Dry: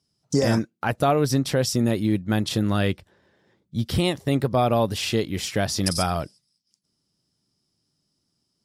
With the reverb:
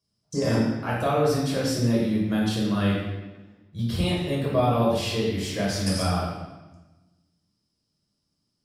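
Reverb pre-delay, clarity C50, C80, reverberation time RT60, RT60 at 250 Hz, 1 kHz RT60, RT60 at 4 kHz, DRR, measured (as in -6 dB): 3 ms, 0.5 dB, 3.0 dB, 1.1 s, 1.5 s, 1.1 s, 0.95 s, -5.5 dB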